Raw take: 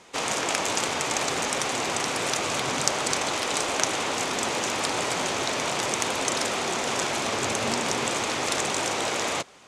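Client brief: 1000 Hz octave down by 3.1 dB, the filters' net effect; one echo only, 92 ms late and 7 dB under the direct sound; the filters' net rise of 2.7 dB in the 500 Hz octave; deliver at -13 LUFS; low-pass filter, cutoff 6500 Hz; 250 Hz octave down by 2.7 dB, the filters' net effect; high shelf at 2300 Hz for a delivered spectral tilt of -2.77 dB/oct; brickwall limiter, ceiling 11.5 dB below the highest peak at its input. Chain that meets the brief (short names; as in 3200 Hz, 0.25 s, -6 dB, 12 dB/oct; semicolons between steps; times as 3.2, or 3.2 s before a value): LPF 6500 Hz; bell 250 Hz -6 dB; bell 500 Hz +6.5 dB; bell 1000 Hz -5 dB; high shelf 2300 Hz -5.5 dB; limiter -19 dBFS; echo 92 ms -7 dB; gain +15.5 dB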